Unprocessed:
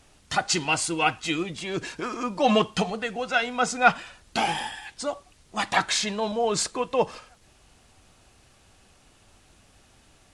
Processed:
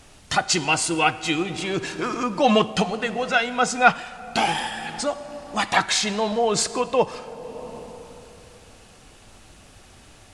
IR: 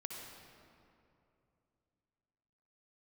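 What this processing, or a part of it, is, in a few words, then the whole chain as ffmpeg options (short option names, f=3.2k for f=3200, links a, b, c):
ducked reverb: -filter_complex "[0:a]asplit=3[a][b][c];[1:a]atrim=start_sample=2205[d];[b][d]afir=irnorm=-1:irlink=0[e];[c]apad=whole_len=455575[f];[e][f]sidechaincompress=threshold=-33dB:ratio=8:attack=6:release=590,volume=3.5dB[g];[a][g]amix=inputs=2:normalize=0,volume=2dB"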